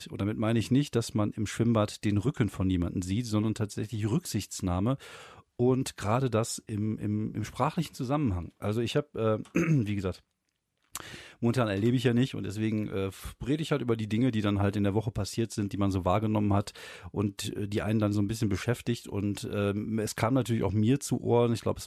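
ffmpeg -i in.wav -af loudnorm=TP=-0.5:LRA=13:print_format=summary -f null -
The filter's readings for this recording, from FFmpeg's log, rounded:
Input Integrated:    -29.6 LUFS
Input True Peak:     -12.5 dBTP
Input LRA:             1.9 LU
Input Threshold:     -39.8 LUFS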